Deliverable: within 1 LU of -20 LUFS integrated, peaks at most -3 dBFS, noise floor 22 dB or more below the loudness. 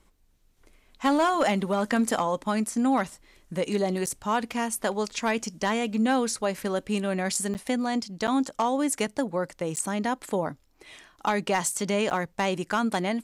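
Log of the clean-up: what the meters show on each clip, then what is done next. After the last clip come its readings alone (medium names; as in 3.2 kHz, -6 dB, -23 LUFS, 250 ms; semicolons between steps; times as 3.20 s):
clipped samples 0.2%; clipping level -16.0 dBFS; dropouts 5; longest dropout 9.0 ms; loudness -27.0 LUFS; peak level -16.0 dBFS; loudness target -20.0 LUFS
-> clip repair -16 dBFS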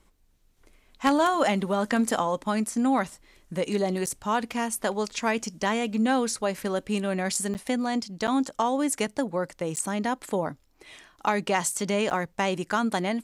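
clipped samples 0.0%; dropouts 5; longest dropout 9.0 ms
-> interpolate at 4.06/7.54/8.27/9.76/12.10 s, 9 ms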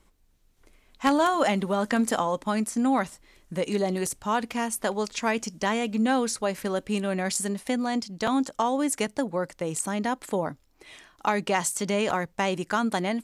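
dropouts 0; loudness -27.0 LUFS; peak level -7.0 dBFS; loudness target -20.0 LUFS
-> trim +7 dB; peak limiter -3 dBFS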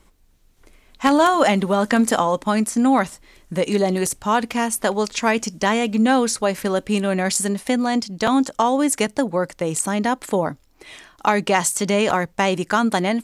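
loudness -20.0 LUFS; peak level -3.0 dBFS; noise floor -56 dBFS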